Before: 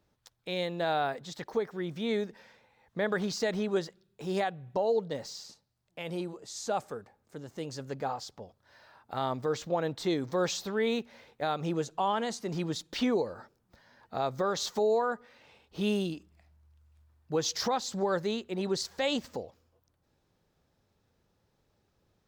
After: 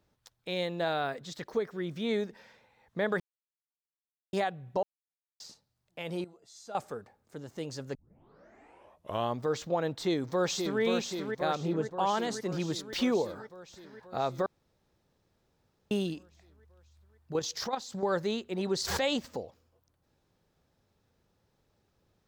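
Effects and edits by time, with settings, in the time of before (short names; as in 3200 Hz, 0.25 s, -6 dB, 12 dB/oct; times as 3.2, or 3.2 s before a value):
0.88–2.05 bell 830 Hz -6.5 dB 0.4 oct
3.2–4.33 mute
4.83–5.4 mute
6.24–6.75 resonator 690 Hz, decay 0.22 s, mix 80%
7.95 tape start 1.46 s
9.94–10.81 echo throw 0.53 s, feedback 70%, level -5 dB
11.55–11.99 high shelf 2400 Hz -12 dB
12.9–13.39 high shelf 7000 Hz +6.5 dB
14.46–15.91 room tone
17.32–18.06 level quantiser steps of 9 dB
18.74–19.18 backwards sustainer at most 43 dB/s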